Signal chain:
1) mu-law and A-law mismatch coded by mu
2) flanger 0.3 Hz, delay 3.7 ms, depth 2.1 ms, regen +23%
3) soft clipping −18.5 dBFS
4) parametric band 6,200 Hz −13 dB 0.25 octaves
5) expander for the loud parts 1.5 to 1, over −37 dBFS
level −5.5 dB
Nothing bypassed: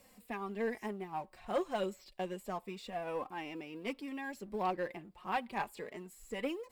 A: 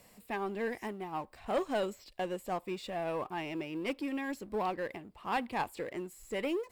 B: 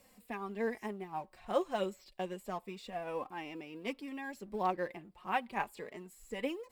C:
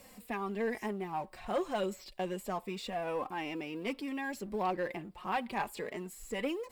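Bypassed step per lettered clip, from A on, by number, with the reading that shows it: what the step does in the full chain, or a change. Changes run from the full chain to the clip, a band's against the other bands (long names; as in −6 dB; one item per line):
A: 2, change in integrated loudness +3.0 LU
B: 3, change in crest factor +6.0 dB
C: 5, 8 kHz band +3.0 dB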